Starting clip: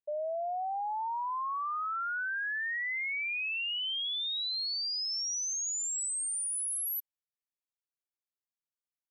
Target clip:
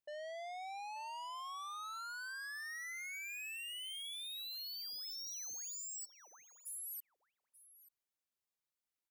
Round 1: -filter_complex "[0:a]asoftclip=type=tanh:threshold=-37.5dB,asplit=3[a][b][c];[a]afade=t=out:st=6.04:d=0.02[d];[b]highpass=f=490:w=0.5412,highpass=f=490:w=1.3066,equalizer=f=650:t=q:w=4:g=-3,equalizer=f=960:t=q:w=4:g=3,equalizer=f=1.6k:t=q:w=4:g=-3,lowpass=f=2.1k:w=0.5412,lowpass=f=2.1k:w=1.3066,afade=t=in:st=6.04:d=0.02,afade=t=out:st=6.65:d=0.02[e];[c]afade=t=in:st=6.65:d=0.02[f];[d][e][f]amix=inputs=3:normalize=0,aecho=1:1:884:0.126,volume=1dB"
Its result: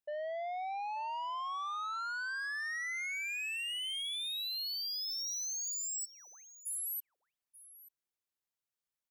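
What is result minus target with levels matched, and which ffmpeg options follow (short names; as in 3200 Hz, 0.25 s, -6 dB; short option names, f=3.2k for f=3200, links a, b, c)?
soft clip: distortion -6 dB
-filter_complex "[0:a]asoftclip=type=tanh:threshold=-46dB,asplit=3[a][b][c];[a]afade=t=out:st=6.04:d=0.02[d];[b]highpass=f=490:w=0.5412,highpass=f=490:w=1.3066,equalizer=f=650:t=q:w=4:g=-3,equalizer=f=960:t=q:w=4:g=3,equalizer=f=1.6k:t=q:w=4:g=-3,lowpass=f=2.1k:w=0.5412,lowpass=f=2.1k:w=1.3066,afade=t=in:st=6.04:d=0.02,afade=t=out:st=6.65:d=0.02[e];[c]afade=t=in:st=6.65:d=0.02[f];[d][e][f]amix=inputs=3:normalize=0,aecho=1:1:884:0.126,volume=1dB"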